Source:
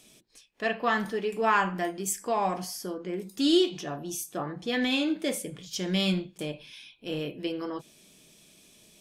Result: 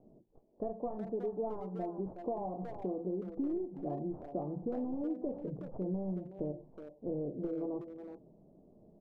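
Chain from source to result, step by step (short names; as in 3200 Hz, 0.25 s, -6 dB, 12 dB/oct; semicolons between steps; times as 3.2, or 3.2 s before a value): tracing distortion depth 0.4 ms; compressor 10:1, threshold -35 dBFS, peak gain reduction 17.5 dB; steep low-pass 780 Hz 36 dB/oct; speakerphone echo 0.37 s, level -8 dB; gain +2.5 dB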